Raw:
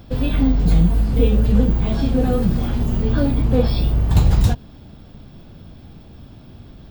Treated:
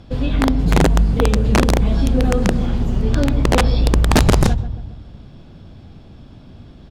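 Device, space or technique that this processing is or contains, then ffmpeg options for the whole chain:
overflowing digital effects unit: -filter_complex "[0:a]asplit=2[a][b];[b]adelay=139,lowpass=f=1.2k:p=1,volume=-10dB,asplit=2[c][d];[d]adelay=139,lowpass=f=1.2k:p=1,volume=0.55,asplit=2[e][f];[f]adelay=139,lowpass=f=1.2k:p=1,volume=0.55,asplit=2[g][h];[h]adelay=139,lowpass=f=1.2k:p=1,volume=0.55,asplit=2[i][j];[j]adelay=139,lowpass=f=1.2k:p=1,volume=0.55,asplit=2[k][l];[l]adelay=139,lowpass=f=1.2k:p=1,volume=0.55[m];[a][c][e][g][i][k][m]amix=inputs=7:normalize=0,aeval=exprs='(mod(2*val(0)+1,2)-1)/2':c=same,lowpass=8.9k"

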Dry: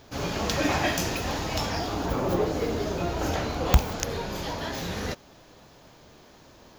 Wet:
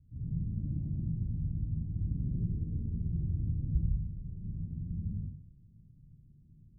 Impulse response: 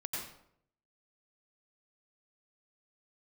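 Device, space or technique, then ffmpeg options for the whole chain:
club heard from the street: -filter_complex "[0:a]alimiter=limit=-13.5dB:level=0:latency=1:release=465,lowpass=f=160:w=0.5412,lowpass=f=160:w=1.3066[a];[1:a]atrim=start_sample=2205[b];[a][b]afir=irnorm=-1:irlink=0"

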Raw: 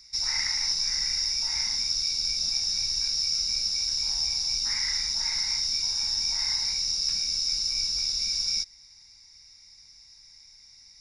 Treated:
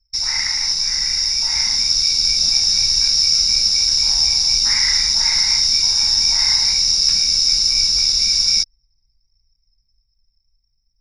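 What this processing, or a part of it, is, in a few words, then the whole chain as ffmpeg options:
voice memo with heavy noise removal: -af "anlmdn=2.51,dynaudnorm=f=250:g=13:m=4.5dB,volume=7.5dB"

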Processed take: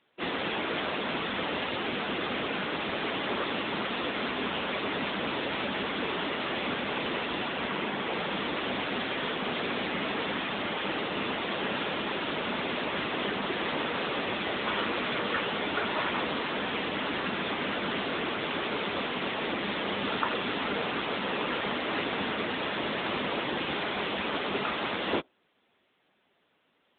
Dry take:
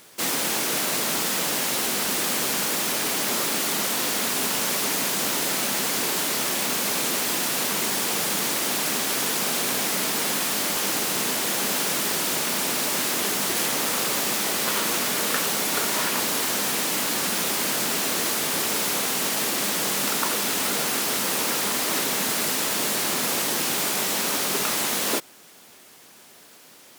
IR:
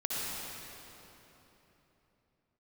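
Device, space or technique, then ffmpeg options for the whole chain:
mobile call with aggressive noise cancelling: -filter_complex "[0:a]asettb=1/sr,asplit=3[a][b][c];[a]atrim=end=7.494[d];[b]atrim=start=7.49:end=8.12,asetpts=PTS-STARTPTS,afade=t=in:d=0.004:c=qsin,afade=t=out:st=0.626:d=0.004:c=qsin,acrossover=split=4600[e][f];[f]acompressor=threshold=-37dB:ratio=4:attack=1:release=60[g];[e][g]amix=inputs=2:normalize=0[h];[c]atrim=start=8.116[i];[d][h]acrossfade=d=0.004:c1=hsin:c2=qsin[j];[j][i]acrossfade=d=0.004:c1=qsin:c2=hsin,highpass=120,afftdn=nr=15:nf=-37" -ar 8000 -c:a libopencore_amrnb -b:a 10200

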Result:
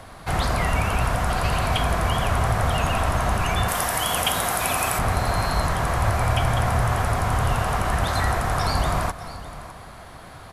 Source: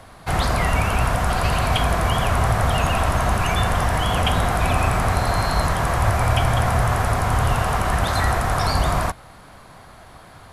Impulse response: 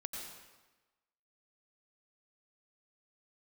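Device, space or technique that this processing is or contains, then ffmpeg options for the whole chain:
ducked reverb: -filter_complex "[0:a]asettb=1/sr,asplit=3[a][b][c];[a]atrim=end=3.684[d];[b]atrim=start=3.68:end=4.99,asetpts=PTS-STARTPTS,afade=t=in:d=0.004:c=qsin,afade=t=out:st=1.306:d=0.004:c=qsin,aemphasis=mode=production:type=bsi[e];[c]atrim=start=4.986[f];[d][e]acrossfade=d=0.004:c1=hsin:c2=qsin[g];[g][f]acrossfade=d=0.004:c1=qsin:c2=hsin,aecho=1:1:606:0.133,asplit=3[h][i][j];[1:a]atrim=start_sample=2205[k];[i][k]afir=irnorm=-1:irlink=0[l];[j]apad=whole_len=486447[m];[l][m]sidechaincompress=threshold=-41dB:ratio=8:attack=16:release=159,volume=2dB[n];[h][n]amix=inputs=2:normalize=0,volume=-3dB"

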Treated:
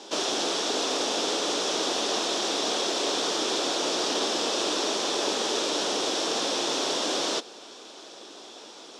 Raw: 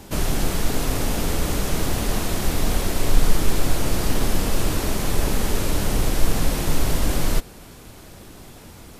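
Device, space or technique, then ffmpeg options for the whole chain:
phone speaker on a table: -af "highpass=f=330:w=0.5412,highpass=f=330:w=1.3066,equalizer=f=2.1k:t=q:w=4:g=-6,equalizer=f=3.5k:t=q:w=4:g=8,equalizer=f=5.5k:t=q:w=4:g=6,lowpass=f=7k:w=0.5412,lowpass=f=7k:w=1.3066,equalizer=f=1.7k:t=o:w=0.77:g=-2.5,volume=1.5dB"

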